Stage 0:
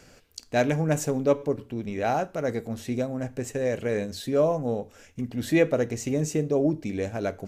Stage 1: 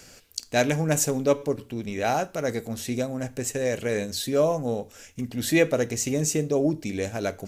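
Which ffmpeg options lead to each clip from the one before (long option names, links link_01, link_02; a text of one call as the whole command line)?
ffmpeg -i in.wav -af "highshelf=frequency=3000:gain=11" out.wav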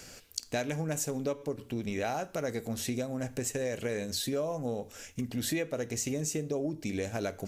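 ffmpeg -i in.wav -af "acompressor=threshold=-30dB:ratio=6" out.wav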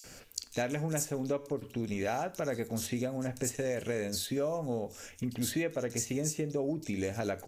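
ffmpeg -i in.wav -filter_complex "[0:a]acrossover=split=3800[link_01][link_02];[link_01]adelay=40[link_03];[link_03][link_02]amix=inputs=2:normalize=0" out.wav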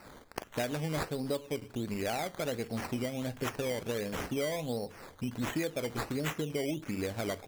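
ffmpeg -i in.wav -af "acrusher=samples=13:mix=1:aa=0.000001:lfo=1:lforange=7.8:lforate=1.4,volume=-1dB" out.wav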